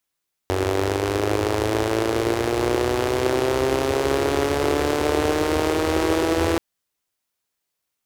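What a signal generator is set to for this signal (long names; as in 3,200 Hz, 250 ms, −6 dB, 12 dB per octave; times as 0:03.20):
pulse-train model of a four-cylinder engine, changing speed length 6.08 s, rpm 2,800, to 5,000, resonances 83/370 Hz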